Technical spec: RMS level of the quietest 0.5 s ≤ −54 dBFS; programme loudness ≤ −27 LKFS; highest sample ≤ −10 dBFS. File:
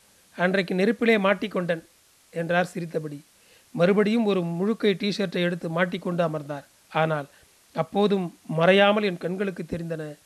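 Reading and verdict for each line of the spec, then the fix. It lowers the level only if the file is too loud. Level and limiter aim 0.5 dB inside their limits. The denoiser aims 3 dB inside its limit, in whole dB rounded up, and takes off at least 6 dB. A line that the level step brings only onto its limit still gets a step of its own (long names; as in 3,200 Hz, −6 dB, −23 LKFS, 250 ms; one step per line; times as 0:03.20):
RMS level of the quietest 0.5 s −58 dBFS: in spec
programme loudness −24.5 LKFS: out of spec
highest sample −7.0 dBFS: out of spec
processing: level −3 dB
brickwall limiter −10.5 dBFS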